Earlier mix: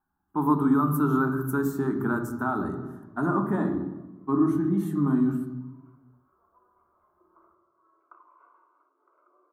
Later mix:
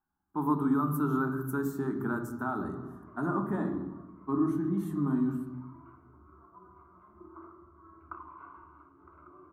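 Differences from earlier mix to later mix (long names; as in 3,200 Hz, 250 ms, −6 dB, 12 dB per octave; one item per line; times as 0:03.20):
speech −5.5 dB
background: remove four-pole ladder high-pass 460 Hz, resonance 65%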